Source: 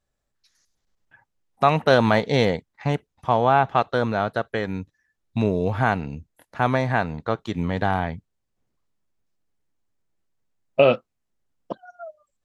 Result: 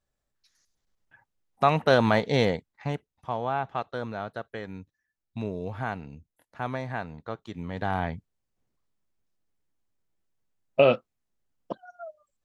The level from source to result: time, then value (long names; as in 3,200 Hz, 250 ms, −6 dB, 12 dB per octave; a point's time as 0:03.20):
0:02.48 −3.5 dB
0:03.32 −11 dB
0:07.65 −11 dB
0:08.05 −3 dB